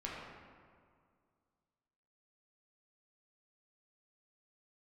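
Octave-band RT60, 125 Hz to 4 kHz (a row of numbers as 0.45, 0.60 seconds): 2.3, 2.3, 2.1, 2.0, 1.6, 1.2 seconds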